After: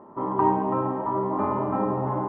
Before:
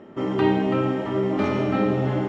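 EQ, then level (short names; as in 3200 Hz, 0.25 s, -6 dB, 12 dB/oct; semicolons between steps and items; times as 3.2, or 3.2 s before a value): synth low-pass 1000 Hz, resonance Q 9.9; -6.0 dB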